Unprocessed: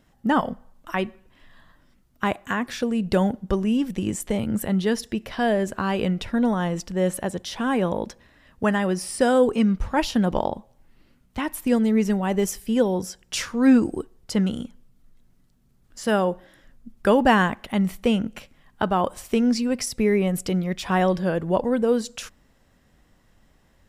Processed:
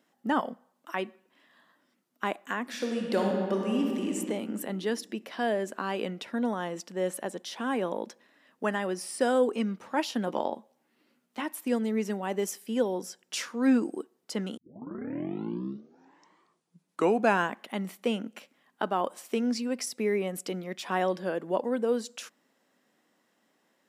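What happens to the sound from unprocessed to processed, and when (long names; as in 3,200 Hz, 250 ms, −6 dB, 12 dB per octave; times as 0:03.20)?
0:02.62–0:04.15: thrown reverb, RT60 2.2 s, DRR 0 dB
0:10.26–0:11.42: double-tracking delay 13 ms −6.5 dB
0:14.57: tape start 3.02 s
whole clip: high-pass filter 230 Hz 24 dB per octave; level −6 dB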